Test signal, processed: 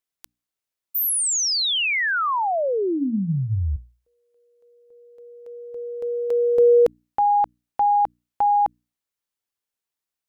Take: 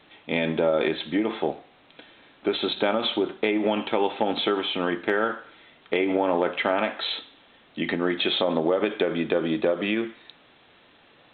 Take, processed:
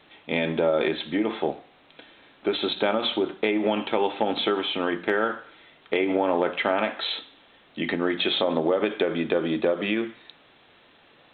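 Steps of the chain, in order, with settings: hum notches 60/120/180/240/300 Hz

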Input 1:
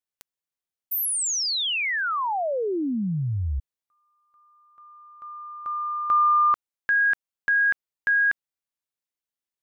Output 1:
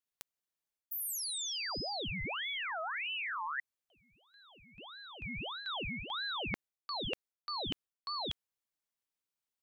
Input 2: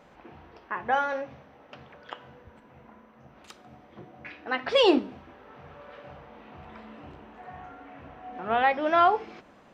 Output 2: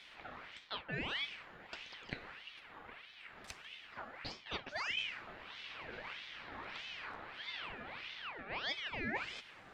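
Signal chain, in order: reverse; compression 20:1, threshold -35 dBFS; reverse; ring modulator with a swept carrier 1.9 kHz, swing 50%, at 1.6 Hz; trim +1.5 dB

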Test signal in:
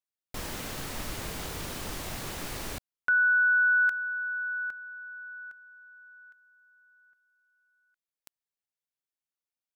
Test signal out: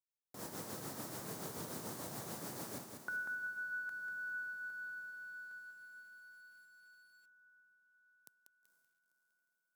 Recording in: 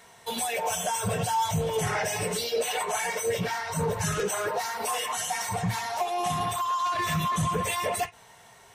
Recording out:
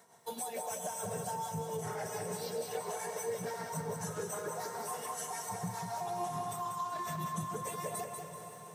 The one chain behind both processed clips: tremolo 6.9 Hz, depth 57%; echo that smears into a reverb 485 ms, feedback 57%, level -13 dB; compression 5:1, threshold -30 dBFS; high-pass 120 Hz 24 dB/octave; peaking EQ 2.7 kHz -12.5 dB 1.4 oct; feedback comb 470 Hz, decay 0.62 s, mix 30%; bit-crushed delay 191 ms, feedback 35%, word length 11-bit, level -5.5 dB; trim -1 dB

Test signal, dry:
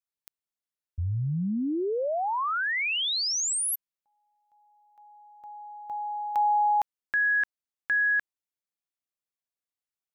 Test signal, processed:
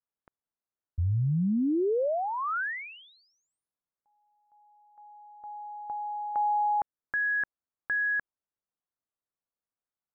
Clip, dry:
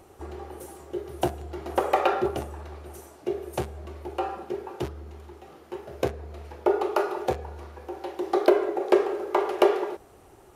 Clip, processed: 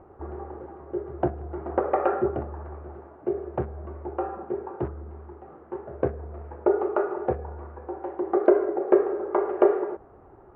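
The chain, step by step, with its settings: low-pass 1.5 kHz 24 dB/octave; dynamic bell 940 Hz, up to -6 dB, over -37 dBFS, Q 1.6; trim +2 dB

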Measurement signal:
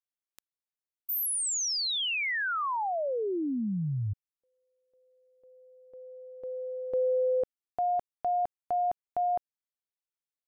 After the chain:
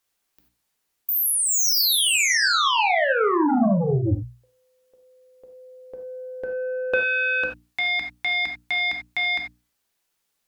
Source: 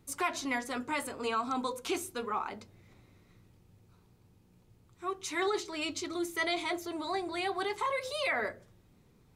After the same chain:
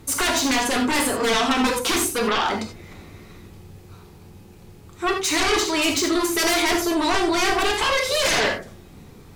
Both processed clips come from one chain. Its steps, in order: hum notches 60/120/180/240/300 Hz; sine folder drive 14 dB, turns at -18.5 dBFS; gated-style reverb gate 110 ms flat, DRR 3 dB

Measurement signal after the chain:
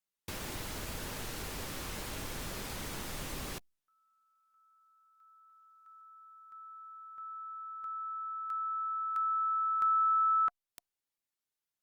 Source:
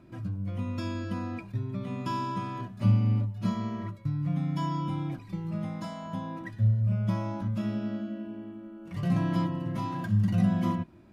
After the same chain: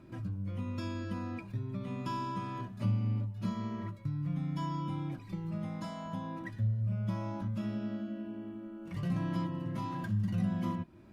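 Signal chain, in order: band-stop 710 Hz, Q 15; compression 1.5:1, threshold -41 dBFS; Opus 48 kbps 48 kHz

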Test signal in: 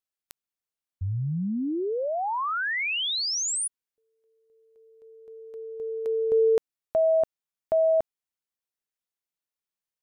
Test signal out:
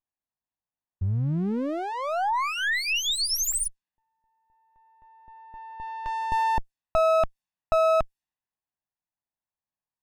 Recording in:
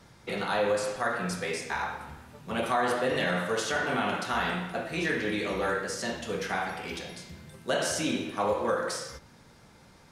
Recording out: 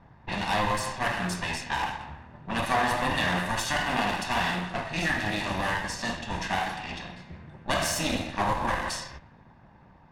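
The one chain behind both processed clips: comb filter that takes the minimum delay 1.1 ms; level-controlled noise filter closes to 1.3 kHz, open at -28.5 dBFS; trim +3.5 dB

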